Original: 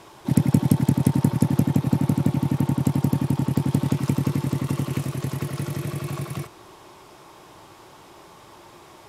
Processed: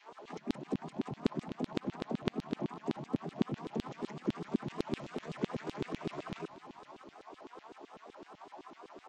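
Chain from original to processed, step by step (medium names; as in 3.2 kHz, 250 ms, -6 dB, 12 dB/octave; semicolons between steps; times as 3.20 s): vocoder on a held chord major triad, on D#3; compression 2.5:1, threshold -28 dBFS, peak gain reduction 12 dB; LFO high-pass saw down 7.9 Hz 260–3600 Hz; feedback delay 230 ms, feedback 43%, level -20 dB; vibrato with a chosen wave saw up 5.4 Hz, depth 250 cents; trim +1 dB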